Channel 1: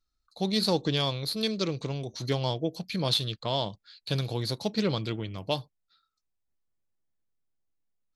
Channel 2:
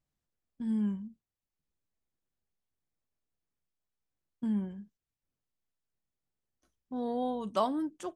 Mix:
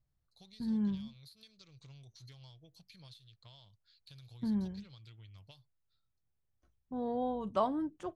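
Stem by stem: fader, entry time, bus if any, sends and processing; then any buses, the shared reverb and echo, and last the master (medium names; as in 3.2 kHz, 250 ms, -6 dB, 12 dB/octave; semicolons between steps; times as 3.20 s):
-9.0 dB, 0.00 s, no send, amplifier tone stack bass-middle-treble 5-5-5; compression 10:1, threshold -46 dBFS, peak gain reduction 17 dB
-0.5 dB, 0.00 s, no send, low-pass 1.8 kHz 6 dB/octave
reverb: none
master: resonant low shelf 160 Hz +8 dB, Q 1.5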